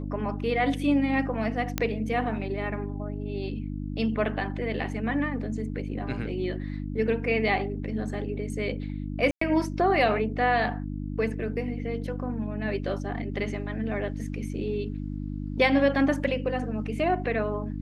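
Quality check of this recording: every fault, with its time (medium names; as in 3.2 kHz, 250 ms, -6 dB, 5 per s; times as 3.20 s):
hum 50 Hz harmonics 6 -33 dBFS
1.78 s: pop -10 dBFS
9.31–9.41 s: dropout 104 ms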